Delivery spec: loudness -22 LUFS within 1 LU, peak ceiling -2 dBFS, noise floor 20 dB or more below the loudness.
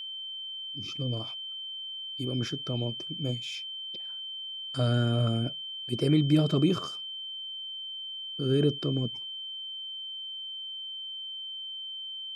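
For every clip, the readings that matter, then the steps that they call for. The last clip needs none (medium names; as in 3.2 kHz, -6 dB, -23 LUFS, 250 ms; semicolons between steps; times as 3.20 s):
steady tone 3.1 kHz; tone level -36 dBFS; loudness -31.0 LUFS; peak level -12.0 dBFS; loudness target -22.0 LUFS
-> band-stop 3.1 kHz, Q 30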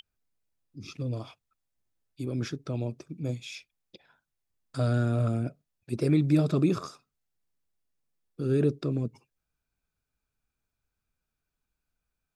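steady tone not found; loudness -29.5 LUFS; peak level -12.5 dBFS; loudness target -22.0 LUFS
-> trim +7.5 dB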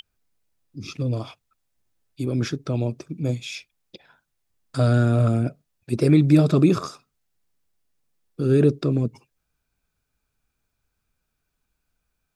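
loudness -22.0 LUFS; peak level -5.0 dBFS; noise floor -78 dBFS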